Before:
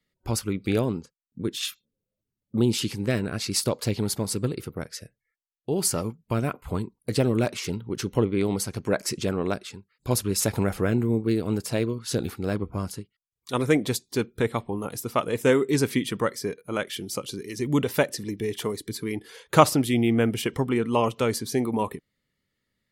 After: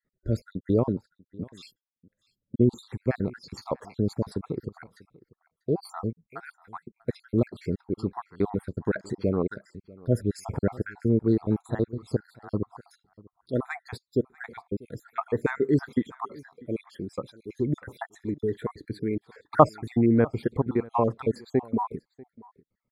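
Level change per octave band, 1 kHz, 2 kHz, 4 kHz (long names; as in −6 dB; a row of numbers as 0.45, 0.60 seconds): −2.0, −7.5, −18.0 decibels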